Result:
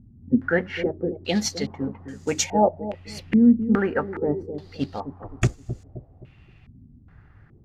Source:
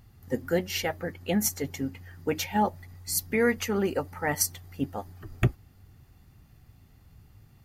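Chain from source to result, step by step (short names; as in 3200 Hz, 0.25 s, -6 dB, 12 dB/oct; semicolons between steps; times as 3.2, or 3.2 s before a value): companded quantiser 6-bit; analogue delay 0.26 s, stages 1024, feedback 41%, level -10 dB; stepped low-pass 2.4 Hz 240–7000 Hz; gain +2.5 dB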